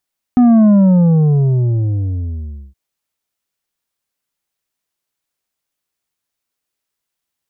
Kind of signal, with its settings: sub drop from 250 Hz, over 2.37 s, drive 6.5 dB, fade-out 2.08 s, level -6.5 dB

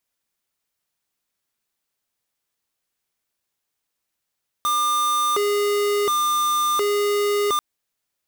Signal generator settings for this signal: siren hi-lo 410–1200 Hz 0.7 per s square -20.5 dBFS 2.94 s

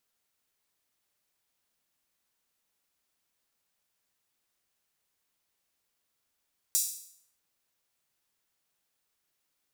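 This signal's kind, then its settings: open hi-hat length 0.64 s, high-pass 6.5 kHz, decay 0.64 s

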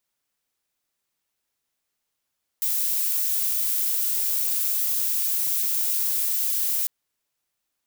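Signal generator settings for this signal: noise violet, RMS -24 dBFS 4.25 s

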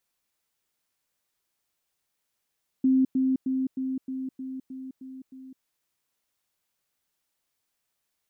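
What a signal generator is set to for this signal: level ladder 262 Hz -17.5 dBFS, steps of -3 dB, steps 9, 0.21 s 0.10 s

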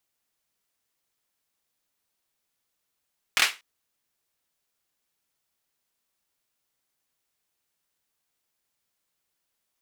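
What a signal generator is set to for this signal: hand clap length 0.24 s, bursts 3, apart 25 ms, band 2.2 kHz, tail 0.25 s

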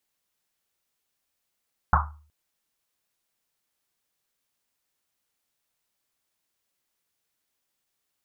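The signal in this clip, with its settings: Risset drum length 0.37 s, pitch 75 Hz, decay 0.50 s, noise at 1.1 kHz, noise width 550 Hz, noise 60%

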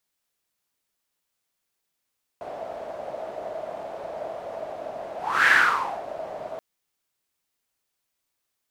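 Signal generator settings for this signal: whoosh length 4.18 s, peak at 3.08 s, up 0.35 s, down 0.60 s, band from 640 Hz, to 1.7 kHz, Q 7.5, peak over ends 18 dB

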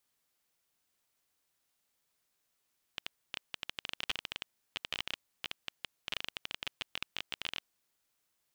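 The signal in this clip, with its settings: random clicks 17 per s -18.5 dBFS 4.70 s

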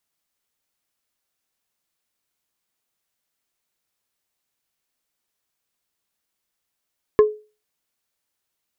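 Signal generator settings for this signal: wood hit plate, lowest mode 425 Hz, decay 0.32 s, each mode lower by 10 dB, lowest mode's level -6 dB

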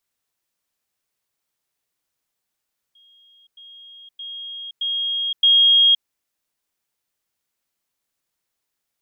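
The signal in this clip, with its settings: level ladder 3.26 kHz -50.5 dBFS, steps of 10 dB, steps 5, 0.52 s 0.10 s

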